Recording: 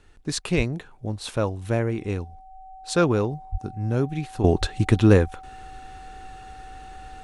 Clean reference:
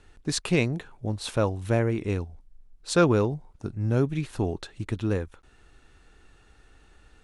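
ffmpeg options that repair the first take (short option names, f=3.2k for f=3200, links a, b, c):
-filter_complex "[0:a]bandreject=f=760:w=30,asplit=3[a][b][c];[a]afade=t=out:st=0.56:d=0.02[d];[b]highpass=f=140:w=0.5412,highpass=f=140:w=1.3066,afade=t=in:st=0.56:d=0.02,afade=t=out:st=0.68:d=0.02[e];[c]afade=t=in:st=0.68:d=0.02[f];[d][e][f]amix=inputs=3:normalize=0,asplit=3[g][h][i];[g]afade=t=out:st=3.51:d=0.02[j];[h]highpass=f=140:w=0.5412,highpass=f=140:w=1.3066,afade=t=in:st=3.51:d=0.02,afade=t=out:st=3.63:d=0.02[k];[i]afade=t=in:st=3.63:d=0.02[l];[j][k][l]amix=inputs=3:normalize=0,asplit=3[m][n][o];[m]afade=t=out:st=4.6:d=0.02[p];[n]highpass=f=140:w=0.5412,highpass=f=140:w=1.3066,afade=t=in:st=4.6:d=0.02,afade=t=out:st=4.72:d=0.02[q];[o]afade=t=in:st=4.72:d=0.02[r];[p][q][r]amix=inputs=3:normalize=0,asetnsamples=n=441:p=0,asendcmd='4.44 volume volume -11.5dB',volume=0dB"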